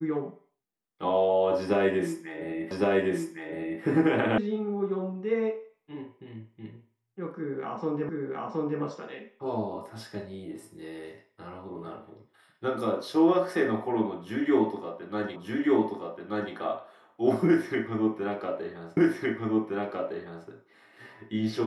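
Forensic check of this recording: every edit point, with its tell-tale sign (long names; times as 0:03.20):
0:02.71: the same again, the last 1.11 s
0:04.38: cut off before it has died away
0:08.09: the same again, the last 0.72 s
0:15.36: the same again, the last 1.18 s
0:18.97: the same again, the last 1.51 s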